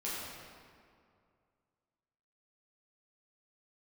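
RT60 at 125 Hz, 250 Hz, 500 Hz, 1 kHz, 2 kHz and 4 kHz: 2.6 s, 2.4 s, 2.3 s, 2.2 s, 1.8 s, 1.4 s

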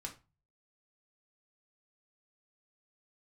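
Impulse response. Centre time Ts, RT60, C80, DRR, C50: 12 ms, 0.30 s, 19.5 dB, 0.0 dB, 12.0 dB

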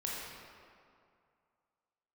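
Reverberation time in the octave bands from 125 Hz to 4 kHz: 2.3 s, 2.2 s, 2.3 s, 2.4 s, 1.9 s, 1.4 s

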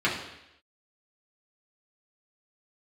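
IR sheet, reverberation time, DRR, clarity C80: 0.85 s, -6.5 dB, 8.5 dB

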